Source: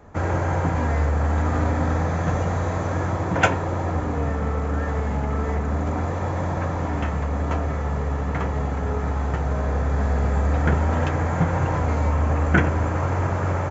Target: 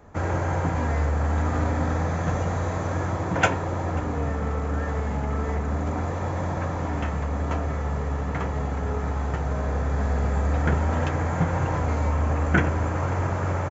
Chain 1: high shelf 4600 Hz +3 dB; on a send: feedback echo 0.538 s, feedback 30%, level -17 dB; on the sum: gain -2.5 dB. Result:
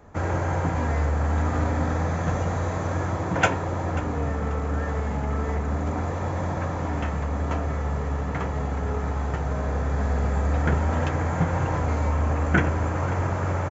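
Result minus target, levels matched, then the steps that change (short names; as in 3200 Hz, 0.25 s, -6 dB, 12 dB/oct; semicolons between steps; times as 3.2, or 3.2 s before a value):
echo-to-direct +6 dB
change: feedback echo 0.538 s, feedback 30%, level -23 dB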